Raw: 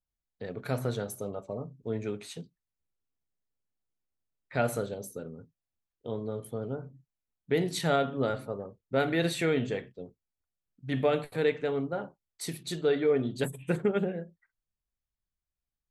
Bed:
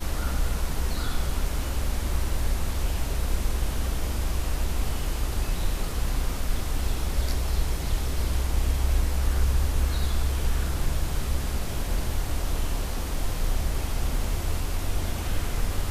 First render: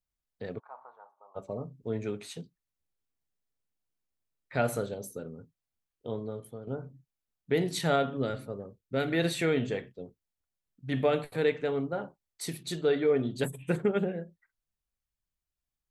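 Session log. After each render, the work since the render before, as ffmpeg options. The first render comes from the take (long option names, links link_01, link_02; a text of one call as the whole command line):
ffmpeg -i in.wav -filter_complex "[0:a]asplit=3[link_01][link_02][link_03];[link_01]afade=type=out:start_time=0.58:duration=0.02[link_04];[link_02]asuperpass=centerf=960:order=4:qfactor=3.1,afade=type=in:start_time=0.58:duration=0.02,afade=type=out:start_time=1.35:duration=0.02[link_05];[link_03]afade=type=in:start_time=1.35:duration=0.02[link_06];[link_04][link_05][link_06]amix=inputs=3:normalize=0,asettb=1/sr,asplit=3[link_07][link_08][link_09];[link_07]atrim=end=8.174[link_10];[link_08]atrim=start=8.17:end=9.12,asetpts=PTS-STARTPTS,afade=type=in:duration=0.004:curve=qsin,afade=type=out:start_time=0.946:duration=0.004:curve=qsin,equalizer=frequency=890:width=1:gain=-7.5[link_11];[link_09]atrim=start=9.116[link_12];[link_10][link_11]acrossfade=duration=0.004:curve1=hsin:curve2=qsin[link_13];[link_13][link_12]acrossfade=duration=0.004:curve1=qsin:curve2=hsin,asplit=2[link_14][link_15];[link_14]atrim=end=6.67,asetpts=PTS-STARTPTS,afade=type=out:start_time=6.11:duration=0.56:silence=0.298538[link_16];[link_15]atrim=start=6.67,asetpts=PTS-STARTPTS,afade=type=in:duration=0.004:curve=hsin:silence=0.298538[link_17];[link_16][link_17]concat=n=2:v=0:a=1" out.wav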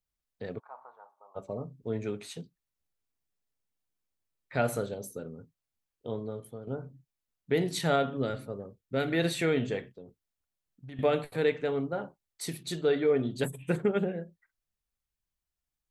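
ffmpeg -i in.wav -filter_complex "[0:a]asettb=1/sr,asplit=3[link_01][link_02][link_03];[link_01]atrim=end=9.974[link_04];[link_02]atrim=start=9.97:end=10.99,asetpts=PTS-STARTPTS,afade=type=in:duration=0.004:curve=qsin,afade=type=out:start_time=1.016:duration=0.004:curve=qsin,acompressor=threshold=-42dB:ratio=6:attack=3.2:release=140:knee=1:detection=peak[link_05];[link_03]atrim=start=10.986[link_06];[link_04][link_05]acrossfade=duration=0.004:curve1=hsin:curve2=qsin[link_07];[link_07][link_06]acrossfade=duration=0.004:curve1=qsin:curve2=hsin" out.wav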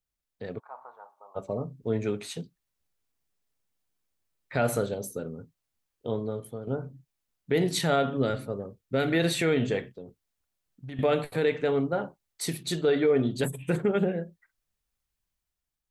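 ffmpeg -i in.wav -af "dynaudnorm=framelen=150:gausssize=9:maxgain=5dB,alimiter=limit=-15dB:level=0:latency=1:release=46" out.wav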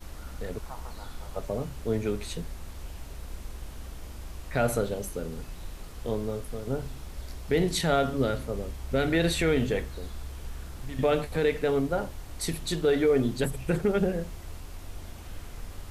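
ffmpeg -i in.wav -i bed.wav -filter_complex "[1:a]volume=-13.5dB[link_01];[0:a][link_01]amix=inputs=2:normalize=0" out.wav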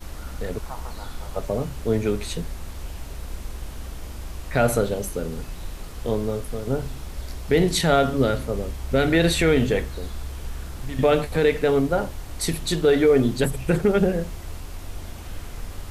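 ffmpeg -i in.wav -af "volume=6dB" out.wav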